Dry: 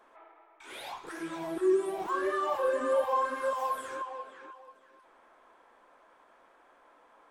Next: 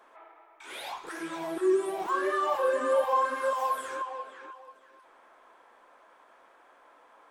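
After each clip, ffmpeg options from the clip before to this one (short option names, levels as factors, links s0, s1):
-af "lowshelf=f=240:g=-9,volume=1.5"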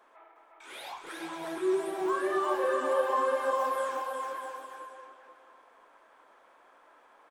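-af "aecho=1:1:360|630|832.5|984.4|1098:0.631|0.398|0.251|0.158|0.1,volume=0.668"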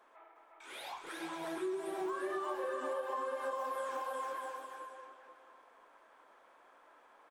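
-af "acompressor=threshold=0.0282:ratio=12,volume=0.708"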